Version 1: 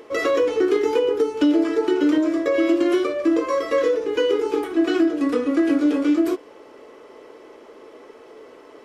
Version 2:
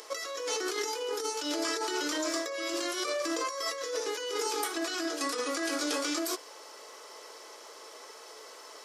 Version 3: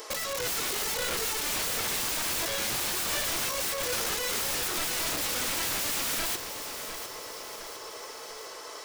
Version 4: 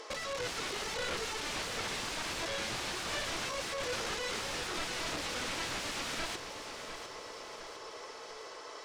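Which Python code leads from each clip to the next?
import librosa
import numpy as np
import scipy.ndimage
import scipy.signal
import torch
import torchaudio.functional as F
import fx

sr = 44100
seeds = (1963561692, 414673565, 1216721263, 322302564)

y1 = scipy.signal.sosfilt(scipy.signal.butter(2, 880.0, 'highpass', fs=sr, output='sos'), x)
y1 = fx.high_shelf_res(y1, sr, hz=3700.0, db=10.5, q=1.5)
y1 = fx.over_compress(y1, sr, threshold_db=-33.0, ratio=-1.0)
y2 = (np.mod(10.0 ** (31.5 / 20.0) * y1 + 1.0, 2.0) - 1.0) / 10.0 ** (31.5 / 20.0)
y2 = fx.echo_feedback(y2, sr, ms=705, feedback_pct=50, wet_db=-9.5)
y2 = y2 * librosa.db_to_amplitude(5.5)
y3 = fx.air_absorb(y2, sr, metres=88.0)
y3 = y3 * librosa.db_to_amplitude(-3.0)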